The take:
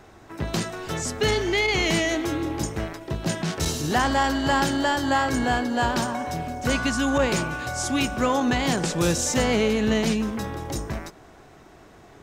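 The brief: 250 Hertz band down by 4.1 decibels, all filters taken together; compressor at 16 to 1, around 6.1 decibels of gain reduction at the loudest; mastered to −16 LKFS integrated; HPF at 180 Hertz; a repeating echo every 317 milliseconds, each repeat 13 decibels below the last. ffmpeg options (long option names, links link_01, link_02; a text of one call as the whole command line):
ffmpeg -i in.wav -af "highpass=180,equalizer=frequency=250:width_type=o:gain=-3.5,acompressor=threshold=-24dB:ratio=16,aecho=1:1:317|634|951:0.224|0.0493|0.0108,volume=13dB" out.wav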